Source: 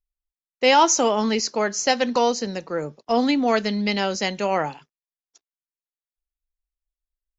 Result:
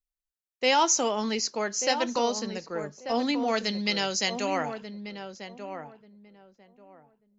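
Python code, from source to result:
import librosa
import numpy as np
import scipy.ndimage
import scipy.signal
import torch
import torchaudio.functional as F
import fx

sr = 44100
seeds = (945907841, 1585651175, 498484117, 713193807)

y = fx.high_shelf(x, sr, hz=2700.0, db=fx.steps((0.0, 5.0), (3.57, 12.0), (4.64, 4.0)))
y = fx.echo_filtered(y, sr, ms=1188, feedback_pct=21, hz=1200.0, wet_db=-8.0)
y = F.gain(torch.from_numpy(y), -7.5).numpy()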